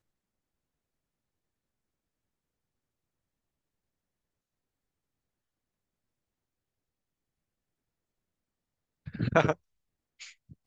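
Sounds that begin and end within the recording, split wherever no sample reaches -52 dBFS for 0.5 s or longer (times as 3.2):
9.06–9.55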